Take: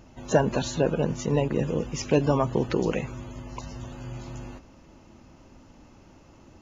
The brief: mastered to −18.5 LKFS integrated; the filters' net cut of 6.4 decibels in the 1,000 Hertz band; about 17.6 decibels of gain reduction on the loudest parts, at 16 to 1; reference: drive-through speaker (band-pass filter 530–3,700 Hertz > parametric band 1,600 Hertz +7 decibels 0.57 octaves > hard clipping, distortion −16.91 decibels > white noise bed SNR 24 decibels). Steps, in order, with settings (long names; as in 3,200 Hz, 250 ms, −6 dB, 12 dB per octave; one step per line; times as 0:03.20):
parametric band 1,000 Hz −9 dB
downward compressor 16 to 1, threshold −34 dBFS
band-pass filter 530–3,700 Hz
parametric band 1,600 Hz +7 dB 0.57 octaves
hard clipping −37 dBFS
white noise bed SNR 24 dB
level +29 dB